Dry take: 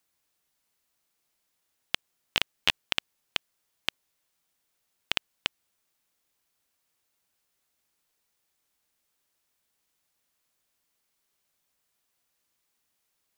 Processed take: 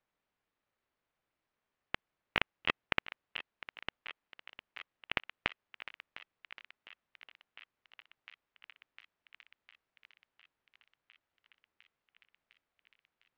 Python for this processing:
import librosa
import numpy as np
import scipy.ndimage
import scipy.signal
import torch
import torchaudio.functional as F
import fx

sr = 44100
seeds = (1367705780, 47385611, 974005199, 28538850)

p1 = scipy.signal.sosfilt(scipy.signal.butter(2, 2500.0, 'lowpass', fs=sr, output='sos'), x)
p2 = fx.formant_shift(p1, sr, semitones=-3)
p3 = p2 + fx.echo_thinned(p2, sr, ms=705, feedback_pct=82, hz=780.0, wet_db=-13.5, dry=0)
p4 = p3 * np.sin(2.0 * np.pi * 320.0 * np.arange(len(p3)) / sr)
y = p4 * 10.0 ** (1.0 / 20.0)